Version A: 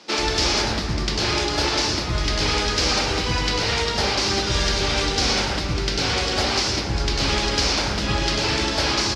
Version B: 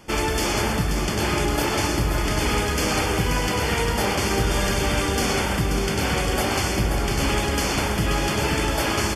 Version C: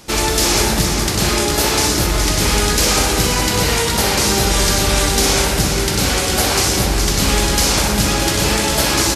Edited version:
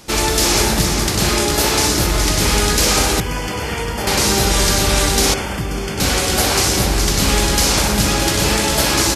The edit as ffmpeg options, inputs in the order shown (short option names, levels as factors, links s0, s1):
-filter_complex "[1:a]asplit=2[s0][s1];[2:a]asplit=3[s2][s3][s4];[s2]atrim=end=3.202[s5];[s0]atrim=start=3.198:end=4.072[s6];[s3]atrim=start=4.068:end=5.342[s7];[s1]atrim=start=5.338:end=6.002[s8];[s4]atrim=start=5.998[s9];[s5][s6]acrossfade=d=0.004:c1=hsin:c2=hsin[s10];[s10][s7]acrossfade=d=0.004:c1=hsin:c2=hsin[s11];[s11][s8]acrossfade=d=0.004:c1=hsin:c2=hsin[s12];[s12][s9]acrossfade=d=0.004:c1=hsin:c2=hsin"